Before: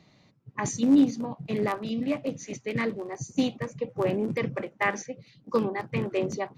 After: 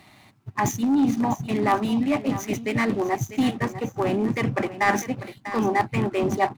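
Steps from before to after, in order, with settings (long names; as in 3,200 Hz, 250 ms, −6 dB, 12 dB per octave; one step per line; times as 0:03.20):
running median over 9 samples
leveller curve on the samples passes 1
reversed playback
downward compressor 6 to 1, threshold −30 dBFS, peak gain reduction 14 dB
reversed playback
thirty-one-band graphic EQ 100 Hz +4 dB, 160 Hz −9 dB, 500 Hz −12 dB, 800 Hz +5 dB
single-tap delay 646 ms −13.5 dB
automatic gain control gain up to 4 dB
one half of a high-frequency compander encoder only
level +7.5 dB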